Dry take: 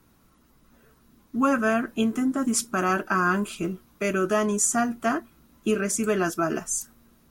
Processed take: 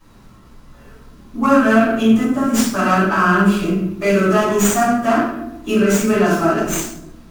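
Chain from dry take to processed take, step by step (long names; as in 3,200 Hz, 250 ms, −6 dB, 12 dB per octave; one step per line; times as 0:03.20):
hum removal 86.49 Hz, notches 32
in parallel at 0 dB: downward compressor, threshold −38 dBFS, peak gain reduction 19 dB
on the sum: rectangular room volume 230 cubic metres, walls mixed, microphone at 5.7 metres
windowed peak hold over 3 samples
level −7 dB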